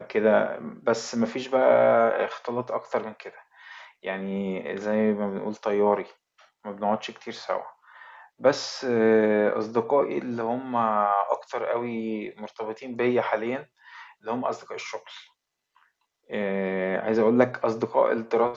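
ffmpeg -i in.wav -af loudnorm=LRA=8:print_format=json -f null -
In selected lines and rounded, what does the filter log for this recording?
"input_i" : "-25.4",
"input_tp" : "-5.5",
"input_lra" : "5.8",
"input_thresh" : "-36.3",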